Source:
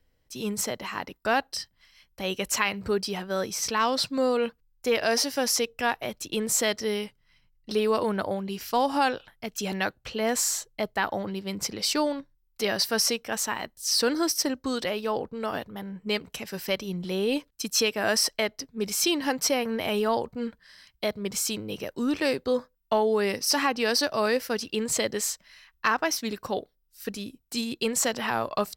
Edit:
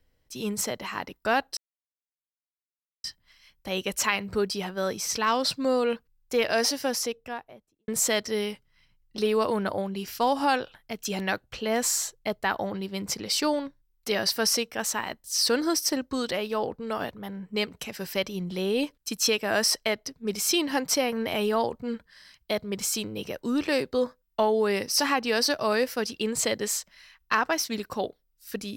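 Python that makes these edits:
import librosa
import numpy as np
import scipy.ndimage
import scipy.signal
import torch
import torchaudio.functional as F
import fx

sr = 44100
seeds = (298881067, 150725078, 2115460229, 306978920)

y = fx.studio_fade_out(x, sr, start_s=5.17, length_s=1.24)
y = fx.edit(y, sr, fx.insert_silence(at_s=1.57, length_s=1.47), tone=tone)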